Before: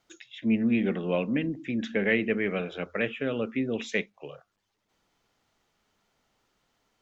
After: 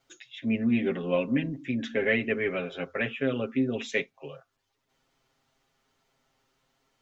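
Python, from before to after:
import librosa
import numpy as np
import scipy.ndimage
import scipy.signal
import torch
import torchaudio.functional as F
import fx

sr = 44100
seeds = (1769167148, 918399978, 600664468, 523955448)

y = x + 0.84 * np.pad(x, (int(7.5 * sr / 1000.0), 0))[:len(x)]
y = y * 10.0 ** (-2.0 / 20.0)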